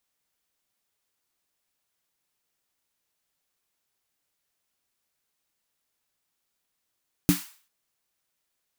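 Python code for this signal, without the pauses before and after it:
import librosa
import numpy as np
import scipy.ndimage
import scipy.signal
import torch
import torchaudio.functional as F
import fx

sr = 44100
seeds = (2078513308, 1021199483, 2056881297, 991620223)

y = fx.drum_snare(sr, seeds[0], length_s=0.39, hz=180.0, second_hz=290.0, noise_db=-11.0, noise_from_hz=950.0, decay_s=0.15, noise_decay_s=0.45)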